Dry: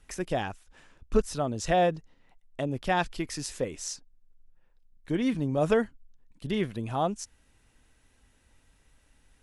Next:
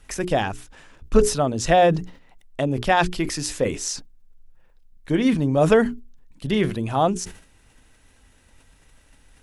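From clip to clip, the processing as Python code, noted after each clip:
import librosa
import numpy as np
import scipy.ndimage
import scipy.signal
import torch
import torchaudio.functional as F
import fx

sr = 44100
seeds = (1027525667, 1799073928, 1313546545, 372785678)

y = fx.hum_notches(x, sr, base_hz=60, count=7)
y = fx.sustainer(y, sr, db_per_s=110.0)
y = F.gain(torch.from_numpy(y), 8.0).numpy()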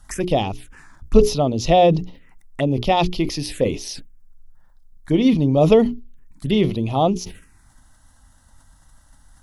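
y = fx.env_phaser(x, sr, low_hz=400.0, high_hz=1600.0, full_db=-22.5)
y = F.gain(torch.from_numpy(y), 4.0).numpy()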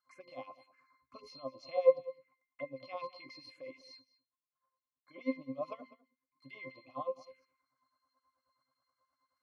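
y = fx.octave_resonator(x, sr, note='C', decay_s=0.26)
y = fx.filter_lfo_highpass(y, sr, shape='sine', hz=9.4, low_hz=700.0, high_hz=2100.0, q=1.2)
y = y + 10.0 ** (-19.0 / 20.0) * np.pad(y, (int(201 * sr / 1000.0), 0))[:len(y)]
y = F.gain(torch.from_numpy(y), 2.0).numpy()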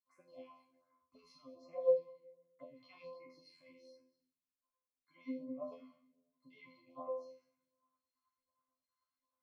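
y = fx.comb_fb(x, sr, f0_hz=86.0, decay_s=0.4, harmonics='all', damping=0.0, mix_pct=100)
y = fx.room_shoebox(y, sr, seeds[0], volume_m3=180.0, walls='mixed', distance_m=0.36)
y = fx.phaser_stages(y, sr, stages=2, low_hz=430.0, high_hz=3700.0, hz=1.3, feedback_pct=5)
y = F.gain(torch.from_numpy(y), 3.5).numpy()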